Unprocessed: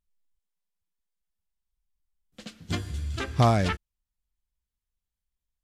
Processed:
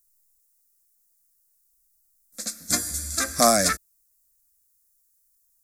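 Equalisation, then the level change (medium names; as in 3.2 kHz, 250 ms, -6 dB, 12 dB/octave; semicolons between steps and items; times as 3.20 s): tone controls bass -8 dB, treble +15 dB; treble shelf 6.6 kHz +9 dB; static phaser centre 600 Hz, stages 8; +6.5 dB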